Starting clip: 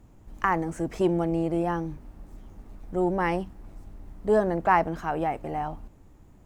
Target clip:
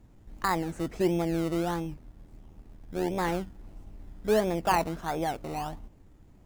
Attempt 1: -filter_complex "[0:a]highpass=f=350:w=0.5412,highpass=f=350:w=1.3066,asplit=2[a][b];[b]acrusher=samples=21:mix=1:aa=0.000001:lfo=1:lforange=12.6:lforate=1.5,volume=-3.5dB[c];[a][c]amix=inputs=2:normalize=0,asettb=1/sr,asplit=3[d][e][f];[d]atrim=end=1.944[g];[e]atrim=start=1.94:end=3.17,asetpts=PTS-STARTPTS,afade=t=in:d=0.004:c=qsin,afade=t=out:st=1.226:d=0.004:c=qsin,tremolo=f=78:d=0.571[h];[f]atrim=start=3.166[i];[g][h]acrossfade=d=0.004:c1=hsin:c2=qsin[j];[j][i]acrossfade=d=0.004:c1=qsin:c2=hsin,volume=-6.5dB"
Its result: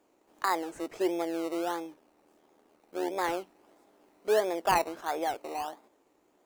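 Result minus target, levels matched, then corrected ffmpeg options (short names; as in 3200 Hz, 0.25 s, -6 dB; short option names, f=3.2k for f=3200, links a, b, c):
250 Hz band -3.5 dB
-filter_complex "[0:a]asplit=2[a][b];[b]acrusher=samples=21:mix=1:aa=0.000001:lfo=1:lforange=12.6:lforate=1.5,volume=-3.5dB[c];[a][c]amix=inputs=2:normalize=0,asettb=1/sr,asplit=3[d][e][f];[d]atrim=end=1.944[g];[e]atrim=start=1.94:end=3.17,asetpts=PTS-STARTPTS,afade=t=in:d=0.004:c=qsin,afade=t=out:st=1.226:d=0.004:c=qsin,tremolo=f=78:d=0.571[h];[f]atrim=start=3.166[i];[g][h]acrossfade=d=0.004:c1=hsin:c2=qsin[j];[j][i]acrossfade=d=0.004:c1=qsin:c2=hsin,volume=-6.5dB"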